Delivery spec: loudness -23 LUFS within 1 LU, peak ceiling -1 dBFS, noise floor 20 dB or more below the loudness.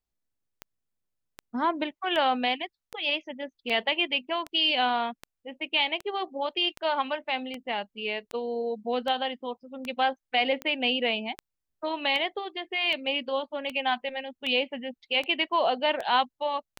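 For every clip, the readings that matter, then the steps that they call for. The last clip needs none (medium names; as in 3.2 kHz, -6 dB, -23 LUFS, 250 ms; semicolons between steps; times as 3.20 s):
clicks found 22; loudness -28.0 LUFS; peak level -11.5 dBFS; loudness target -23.0 LUFS
-> de-click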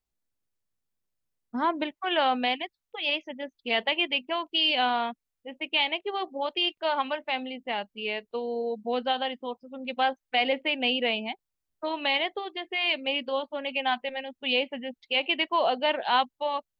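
clicks found 0; loudness -28.0 LUFS; peak level -11.5 dBFS; loudness target -23.0 LUFS
-> trim +5 dB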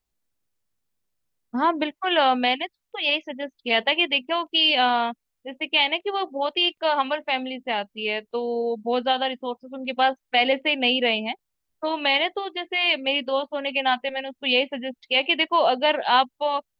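loudness -23.0 LUFS; peak level -6.5 dBFS; noise floor -80 dBFS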